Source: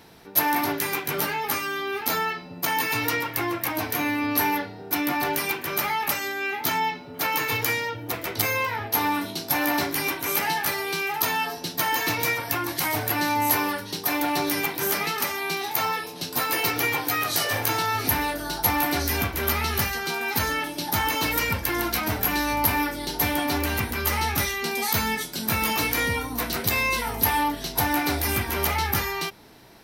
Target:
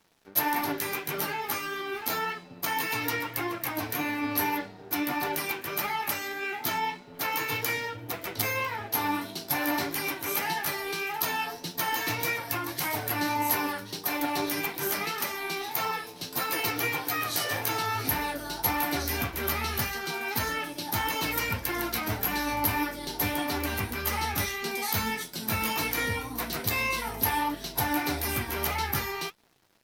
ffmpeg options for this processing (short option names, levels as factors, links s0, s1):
-af "aeval=exprs='sgn(val(0))*max(abs(val(0))-0.00398,0)':c=same,flanger=delay=4.2:depth=6.4:regen=62:speed=1.7:shape=triangular"